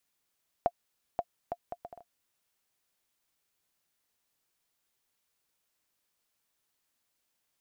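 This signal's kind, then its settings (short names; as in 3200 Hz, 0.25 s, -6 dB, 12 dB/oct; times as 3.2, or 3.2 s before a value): bouncing ball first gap 0.53 s, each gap 0.62, 697 Hz, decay 52 ms -14.5 dBFS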